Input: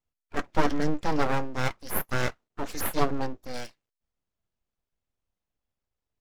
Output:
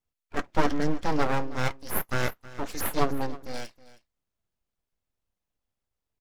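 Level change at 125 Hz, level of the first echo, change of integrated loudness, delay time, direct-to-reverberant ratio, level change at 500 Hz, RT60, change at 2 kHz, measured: 0.0 dB, -18.5 dB, 0.0 dB, 0.318 s, none, 0.0 dB, none, 0.0 dB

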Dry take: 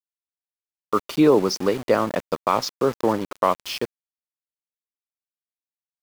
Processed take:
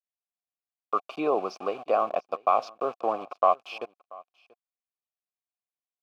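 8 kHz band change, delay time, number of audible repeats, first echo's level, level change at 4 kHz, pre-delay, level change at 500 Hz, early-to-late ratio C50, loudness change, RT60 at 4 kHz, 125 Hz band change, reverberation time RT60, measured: under -20 dB, 0.685 s, 1, -23.0 dB, -14.5 dB, none, -6.5 dB, none, -5.5 dB, none, under -20 dB, none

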